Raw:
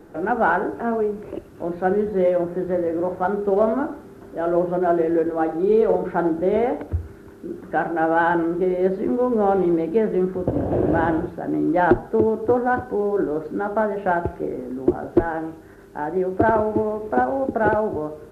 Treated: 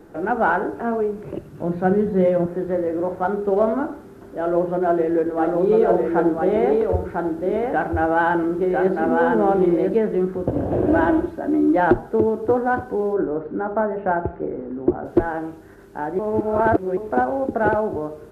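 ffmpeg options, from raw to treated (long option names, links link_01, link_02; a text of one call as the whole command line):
ffmpeg -i in.wav -filter_complex "[0:a]asettb=1/sr,asplit=3[link_01][link_02][link_03];[link_01]atrim=end=1.254[link_04];[link_02]atrim=start=1.25:end=2.46,asetpts=PTS-STARTPTS,afade=type=in:duration=0.004:curve=qsin,afade=type=out:start_time=1.206:duration=0.004:curve=qsin,equalizer=frequency=150:width=2:gain=13[link_05];[link_03]atrim=start=2.456[link_06];[link_04][link_05]acrossfade=duration=0.004:curve1=hsin:curve2=qsin[link_07];[link_07][link_06]acrossfade=duration=0.004:curve1=qsin:curve2=hsin,asettb=1/sr,asplit=3[link_08][link_09][link_10];[link_08]atrim=end=4.374[link_11];[link_09]atrim=start=4.37:end=9.96,asetpts=PTS-STARTPTS,afade=type=in:duration=0.004:curve=qsin,afade=type=out:start_time=5.586:duration=0.004:curve=qsin,aecho=1:1:1000:0.708,atrim=end_sample=246519[link_12];[link_10]atrim=start=9.956[link_13];[link_11][link_12]acrossfade=duration=0.004:curve1=hsin:curve2=qsin[link_14];[link_14][link_13]acrossfade=duration=0.004:curve1=qsin:curve2=hsin,asettb=1/sr,asplit=3[link_15][link_16][link_17];[link_15]atrim=end=10.874[link_18];[link_16]atrim=start=10.87:end=11.76,asetpts=PTS-STARTPTS,afade=type=in:duration=0.004:curve=qsin,afade=type=out:start_time=0.886:duration=0.004:curve=qsin,aecho=1:1:3.2:0.65,atrim=end_sample=39249[link_19];[link_17]atrim=start=11.756[link_20];[link_18][link_19]acrossfade=duration=0.004:curve1=hsin:curve2=qsin[link_21];[link_21][link_20]acrossfade=duration=0.004:curve1=qsin:curve2=hsin,asplit=3[link_22][link_23][link_24];[link_22]afade=type=out:start_time=13.13:duration=0.02[link_25];[link_23]lowpass=1800,afade=type=in:start_time=13.13:duration=0.02,afade=type=out:start_time=15.04:duration=0.02[link_26];[link_24]afade=type=in:start_time=15.04:duration=0.02[link_27];[link_25][link_26][link_27]amix=inputs=3:normalize=0,asplit=3[link_28][link_29][link_30];[link_28]atrim=end=16.192[link_31];[link_29]atrim=start=16.188:end=16.972,asetpts=PTS-STARTPTS,areverse[link_32];[link_30]atrim=start=16.968[link_33];[link_31][link_32]acrossfade=duration=0.004:curve1=hsin:curve2=hsin[link_34];[link_34][link_33]acrossfade=duration=0.004:curve1=hsin:curve2=hsin" out.wav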